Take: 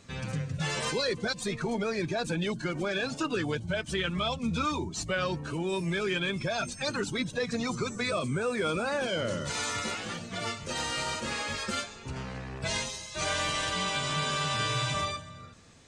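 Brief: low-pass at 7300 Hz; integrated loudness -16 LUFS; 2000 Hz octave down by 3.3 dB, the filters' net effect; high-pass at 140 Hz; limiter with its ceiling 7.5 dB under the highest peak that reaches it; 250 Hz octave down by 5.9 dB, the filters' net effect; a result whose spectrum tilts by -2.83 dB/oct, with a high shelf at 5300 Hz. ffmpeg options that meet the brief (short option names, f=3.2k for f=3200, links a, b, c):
-af "highpass=140,lowpass=7.3k,equalizer=f=250:t=o:g=-7.5,equalizer=f=2k:t=o:g=-5.5,highshelf=f=5.3k:g=8,volume=19dB,alimiter=limit=-7dB:level=0:latency=1"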